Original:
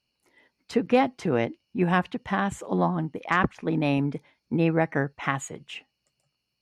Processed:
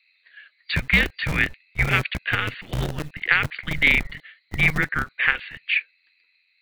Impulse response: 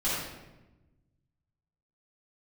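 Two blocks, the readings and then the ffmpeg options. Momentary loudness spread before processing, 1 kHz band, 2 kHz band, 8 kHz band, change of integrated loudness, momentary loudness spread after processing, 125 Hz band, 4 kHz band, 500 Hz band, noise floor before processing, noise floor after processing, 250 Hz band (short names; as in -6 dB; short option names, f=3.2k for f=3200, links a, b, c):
9 LU, -4.5 dB, +12.0 dB, -1.0 dB, +4.0 dB, 10 LU, +1.5 dB, +12.0 dB, -9.0 dB, -80 dBFS, -66 dBFS, -7.0 dB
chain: -filter_complex "[0:a]acrossover=split=430|3000[a][b][c];[b]acompressor=threshold=-25dB:ratio=6[d];[a][d][c]amix=inputs=3:normalize=0,highshelf=f=1.6k:t=q:w=3:g=13,afftfilt=real='re*between(b*sr/4096,160,5000)':imag='im*between(b*sr/4096,160,5000)':win_size=4096:overlap=0.75,afreqshift=-310,acrossover=split=360|450|2100[e][f][g][h];[e]acrusher=bits=5:dc=4:mix=0:aa=0.000001[i];[i][f][g][h]amix=inputs=4:normalize=0,volume=-1dB"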